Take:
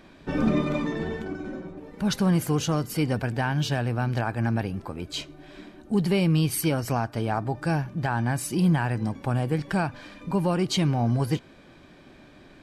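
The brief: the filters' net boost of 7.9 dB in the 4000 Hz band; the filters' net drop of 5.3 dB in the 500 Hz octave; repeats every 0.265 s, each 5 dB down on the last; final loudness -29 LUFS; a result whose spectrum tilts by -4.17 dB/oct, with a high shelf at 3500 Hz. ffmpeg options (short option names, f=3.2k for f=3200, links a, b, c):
-af "equalizer=f=500:t=o:g=-7.5,highshelf=f=3.5k:g=8.5,equalizer=f=4k:t=o:g=4.5,aecho=1:1:265|530|795|1060|1325|1590|1855:0.562|0.315|0.176|0.0988|0.0553|0.031|0.0173,volume=-4.5dB"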